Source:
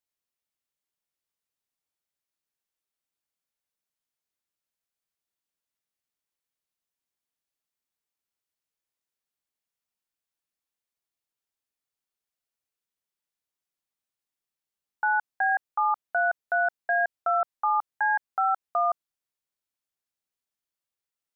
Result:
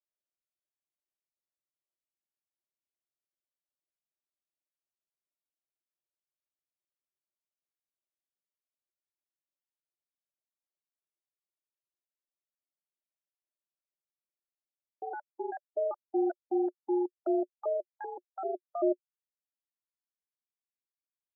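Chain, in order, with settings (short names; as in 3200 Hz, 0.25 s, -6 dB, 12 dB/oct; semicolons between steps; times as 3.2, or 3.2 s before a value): trilling pitch shifter -11.5 st, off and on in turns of 0.194 s; reverb removal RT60 1.9 s; double band-pass 460 Hz, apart 0.71 oct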